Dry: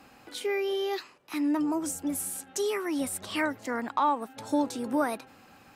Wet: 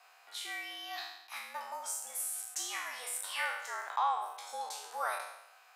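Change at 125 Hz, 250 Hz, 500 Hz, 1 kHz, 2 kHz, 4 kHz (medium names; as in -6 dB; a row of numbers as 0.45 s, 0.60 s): under -40 dB, -36.0 dB, -17.5 dB, -4.5 dB, -2.5 dB, -2.0 dB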